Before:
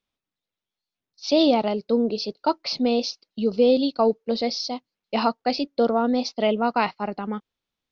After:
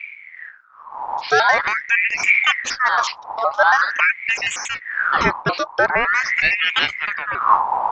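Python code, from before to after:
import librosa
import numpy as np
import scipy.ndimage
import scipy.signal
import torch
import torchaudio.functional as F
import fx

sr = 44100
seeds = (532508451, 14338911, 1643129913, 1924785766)

y = fx.pitch_trill(x, sr, semitones=-5.5, every_ms=93)
y = fx.dmg_wind(y, sr, seeds[0], corner_hz=110.0, level_db=-28.0)
y = fx.ring_lfo(y, sr, carrier_hz=1600.0, swing_pct=45, hz=0.45)
y = y * librosa.db_to_amplitude(6.5)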